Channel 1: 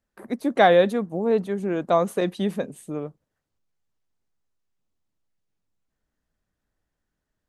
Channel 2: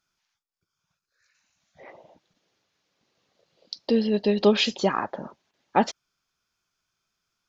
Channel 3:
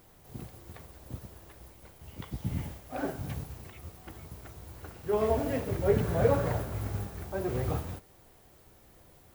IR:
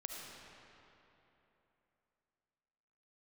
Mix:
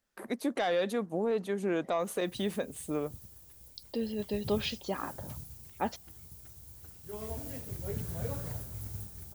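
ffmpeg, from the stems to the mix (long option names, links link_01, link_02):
-filter_complex "[0:a]bass=frequency=250:gain=-5,treble=frequency=4000:gain=-4,asoftclip=type=tanh:threshold=-9.5dB,volume=-1dB[link_01];[1:a]adelay=50,volume=-12dB[link_02];[2:a]bass=frequency=250:gain=10,treble=frequency=4000:gain=10,adelay=2000,volume=-17dB[link_03];[link_01][link_03]amix=inputs=2:normalize=0,highshelf=frequency=2900:gain=10,alimiter=limit=-22.5dB:level=0:latency=1:release=249,volume=0dB[link_04];[link_02][link_04]amix=inputs=2:normalize=0"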